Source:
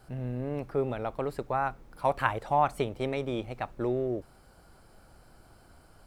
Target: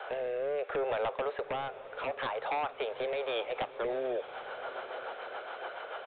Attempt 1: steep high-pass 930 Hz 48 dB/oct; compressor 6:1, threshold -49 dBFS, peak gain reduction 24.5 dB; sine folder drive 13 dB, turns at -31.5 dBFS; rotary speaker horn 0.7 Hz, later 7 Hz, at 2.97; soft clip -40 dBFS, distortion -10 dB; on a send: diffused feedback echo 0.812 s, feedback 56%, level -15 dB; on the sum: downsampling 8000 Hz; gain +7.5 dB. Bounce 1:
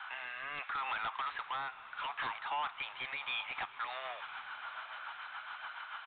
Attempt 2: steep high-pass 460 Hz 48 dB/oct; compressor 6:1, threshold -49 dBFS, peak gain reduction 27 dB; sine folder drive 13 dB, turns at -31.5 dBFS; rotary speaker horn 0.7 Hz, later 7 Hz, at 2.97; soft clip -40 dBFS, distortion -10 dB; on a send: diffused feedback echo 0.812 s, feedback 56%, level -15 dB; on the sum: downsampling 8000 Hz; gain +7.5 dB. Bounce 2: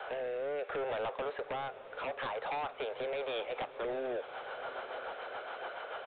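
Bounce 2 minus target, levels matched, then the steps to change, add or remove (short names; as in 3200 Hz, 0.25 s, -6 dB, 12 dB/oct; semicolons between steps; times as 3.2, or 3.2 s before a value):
soft clip: distortion +9 dB
change: soft clip -32.5 dBFS, distortion -19 dB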